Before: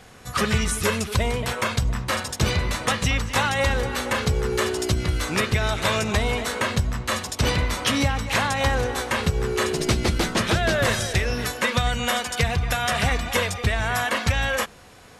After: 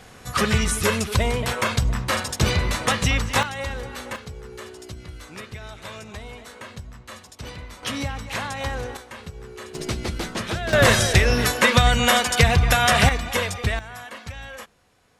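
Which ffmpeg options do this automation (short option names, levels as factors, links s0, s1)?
-af "asetnsamples=n=441:p=0,asendcmd='3.43 volume volume -8dB;4.16 volume volume -15dB;7.83 volume volume -6.5dB;8.97 volume volume -15dB;9.75 volume volume -6dB;10.73 volume volume 6dB;13.09 volume volume -1dB;13.79 volume volume -14dB',volume=1.19"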